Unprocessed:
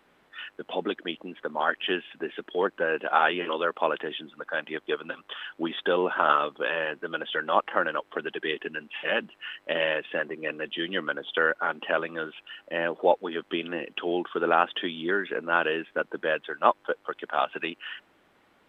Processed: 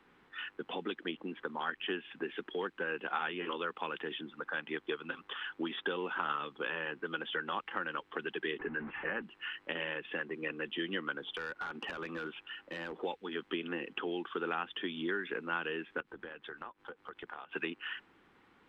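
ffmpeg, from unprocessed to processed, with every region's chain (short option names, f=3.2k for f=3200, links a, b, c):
-filter_complex "[0:a]asettb=1/sr,asplit=3[a][b][c];[a]atrim=end=8.594[d];[b]atrim=start=8.59:end=9.22,asetpts=PTS-STARTPTS,afade=t=in:d=0.004:c=qsin,afade=t=out:st=0.626:d=0.004:c=qsin,aeval=exprs='val(0)+0.5*0.0158*sgn(val(0))':c=same,lowpass=f=1.9k:w=0.5412,lowpass=f=1.9k:w=1.3066[e];[c]atrim=start=9.216[f];[d][e]acrossfade=d=0.004:c1=hsin:c2=qsin[g];[g][f]acrossfade=d=0.004:c1=qsin:c2=hsin,asettb=1/sr,asplit=3[h][i][j];[h]atrim=end=11.334[k];[i]atrim=start=11.33:end=12.96,asetpts=PTS-STARTPTS,afade=t=in:d=0.004:c=qsin,afade=t=out:st=1.626:d=0.004:c=qsin,acompressor=threshold=-29dB:ratio=16:attack=3.2:release=140:knee=1:detection=peak,volume=31dB,asoftclip=hard,volume=-31dB[l];[j]atrim=start=12.956[m];[k][l]acrossfade=d=0.004:c1=hsin:c2=qsin[n];[n][m]acrossfade=d=0.004:c1=qsin:c2=hsin,asettb=1/sr,asplit=3[o][p][q];[o]atrim=end=16.004[r];[p]atrim=start=16:end=17.52,asetpts=PTS-STARTPTS,afade=t=in:d=0.004:c=qsin,afade=t=out:st=1.516:d=0.004:c=qsin,acompressor=threshold=-36dB:ratio=16:attack=3.2:release=140:knee=1:detection=peak,tremolo=f=260:d=0.4[s];[q]atrim=start=17.516[t];[r][s]acrossfade=d=0.004:c1=hsin:c2=qsin[u];[u][t]acrossfade=d=0.004:c1=qsin:c2=hsin,lowpass=f=2.8k:p=1,acrossover=split=160|2100[v][w][x];[v]acompressor=threshold=-56dB:ratio=4[y];[w]acompressor=threshold=-34dB:ratio=4[z];[x]acompressor=threshold=-41dB:ratio=4[aa];[y][z][aa]amix=inputs=3:normalize=0,equalizer=f=620:t=o:w=0.37:g=-13"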